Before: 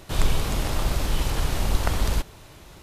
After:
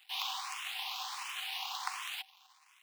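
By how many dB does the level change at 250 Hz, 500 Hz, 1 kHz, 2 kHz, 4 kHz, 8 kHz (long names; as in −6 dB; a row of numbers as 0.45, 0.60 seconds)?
below −40 dB, −33.0 dB, −7.5 dB, −6.5 dB, −3.5 dB, −10.5 dB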